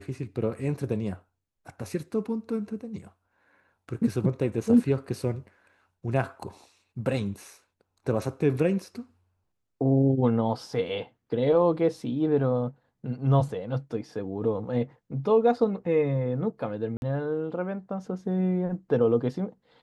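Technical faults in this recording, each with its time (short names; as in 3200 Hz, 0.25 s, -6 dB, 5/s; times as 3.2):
16.97–17.02 gap 51 ms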